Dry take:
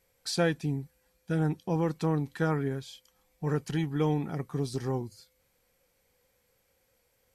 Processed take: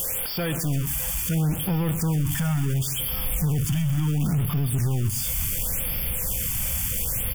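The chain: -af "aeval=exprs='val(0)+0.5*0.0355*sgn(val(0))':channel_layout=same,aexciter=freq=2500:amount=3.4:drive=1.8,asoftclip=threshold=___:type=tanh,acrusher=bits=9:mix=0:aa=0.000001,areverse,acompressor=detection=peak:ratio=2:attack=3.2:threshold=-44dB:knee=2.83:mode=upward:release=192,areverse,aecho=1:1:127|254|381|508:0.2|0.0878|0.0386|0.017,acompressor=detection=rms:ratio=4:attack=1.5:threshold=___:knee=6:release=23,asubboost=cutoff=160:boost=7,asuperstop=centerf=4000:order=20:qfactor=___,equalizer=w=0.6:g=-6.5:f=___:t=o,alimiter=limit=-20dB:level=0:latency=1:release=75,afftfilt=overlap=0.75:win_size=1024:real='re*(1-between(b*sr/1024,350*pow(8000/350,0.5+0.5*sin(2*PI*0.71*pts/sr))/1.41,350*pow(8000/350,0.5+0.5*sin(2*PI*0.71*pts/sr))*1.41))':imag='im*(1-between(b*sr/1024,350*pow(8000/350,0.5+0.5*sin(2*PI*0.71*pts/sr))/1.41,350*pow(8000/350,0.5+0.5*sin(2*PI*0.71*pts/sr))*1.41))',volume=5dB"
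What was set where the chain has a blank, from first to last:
-17.5dB, -29dB, 4.9, 5100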